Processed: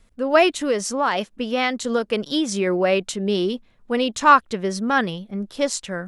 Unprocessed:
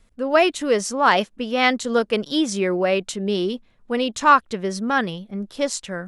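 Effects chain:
0:00.52–0:02.67: downward compressor 6 to 1, threshold −18 dBFS, peak gain reduction 8 dB
level +1 dB

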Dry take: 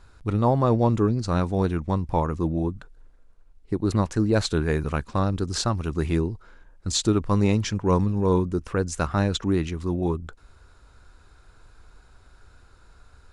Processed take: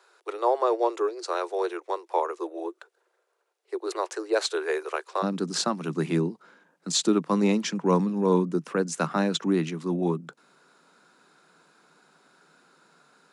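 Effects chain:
Butterworth high-pass 350 Hz 96 dB per octave, from 0:05.22 150 Hz

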